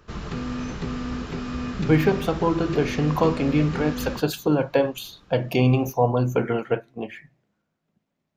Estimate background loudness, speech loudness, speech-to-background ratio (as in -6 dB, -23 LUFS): -31.5 LUFS, -23.0 LUFS, 8.5 dB